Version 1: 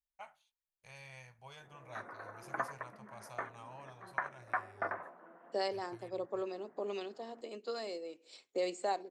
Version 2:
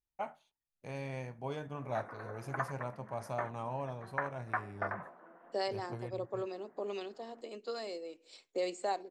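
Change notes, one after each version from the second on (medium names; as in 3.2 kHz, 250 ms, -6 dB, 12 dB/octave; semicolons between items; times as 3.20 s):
first voice: remove amplifier tone stack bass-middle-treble 10-0-10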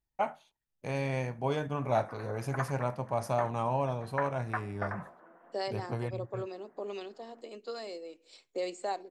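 first voice +8.5 dB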